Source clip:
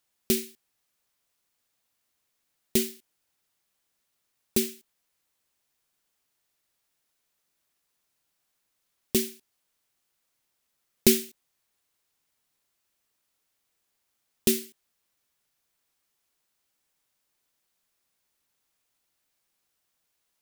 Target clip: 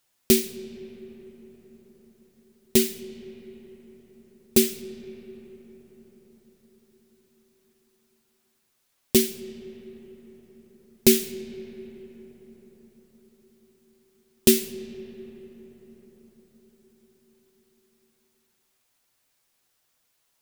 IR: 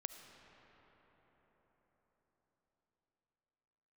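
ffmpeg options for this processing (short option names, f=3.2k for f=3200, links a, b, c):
-filter_complex "[0:a]alimiter=limit=-8dB:level=0:latency=1:release=335,asplit=2[a][b];[1:a]atrim=start_sample=2205,asetrate=40572,aresample=44100,adelay=8[c];[b][c]afir=irnorm=-1:irlink=0,volume=-3dB[d];[a][d]amix=inputs=2:normalize=0,volume=5dB"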